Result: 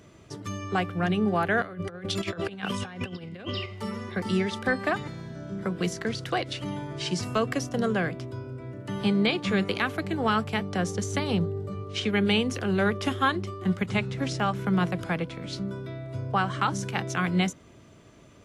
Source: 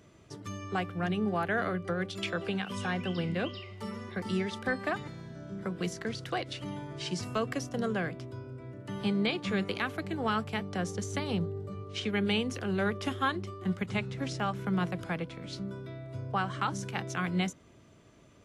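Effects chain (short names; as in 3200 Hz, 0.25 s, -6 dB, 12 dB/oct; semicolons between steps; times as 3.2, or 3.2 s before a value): 1.62–3.66 negative-ratio compressor -38 dBFS, ratio -0.5; gain +5.5 dB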